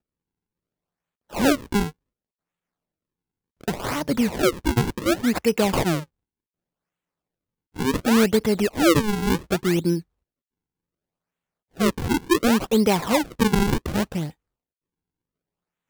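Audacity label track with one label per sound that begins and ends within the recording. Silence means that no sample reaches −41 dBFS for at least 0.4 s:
1.310000	1.910000	sound
3.610000	6.040000	sound
7.760000	10.010000	sound
11.770000	14.310000	sound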